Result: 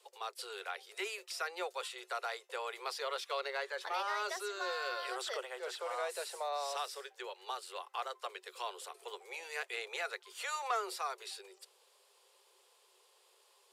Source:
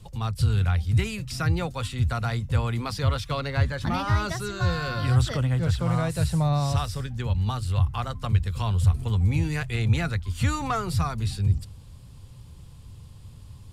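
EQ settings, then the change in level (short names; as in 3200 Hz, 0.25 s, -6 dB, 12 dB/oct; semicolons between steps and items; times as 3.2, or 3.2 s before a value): Chebyshev high-pass 370 Hz, order 10; -6.0 dB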